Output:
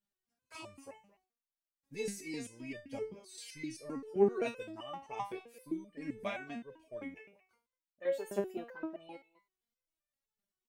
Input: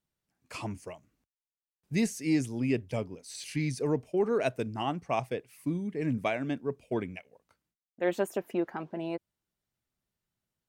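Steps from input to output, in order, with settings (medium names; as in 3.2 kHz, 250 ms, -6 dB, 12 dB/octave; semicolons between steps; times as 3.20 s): speakerphone echo 220 ms, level -20 dB; resonator arpeggio 7.7 Hz 200–600 Hz; trim +7.5 dB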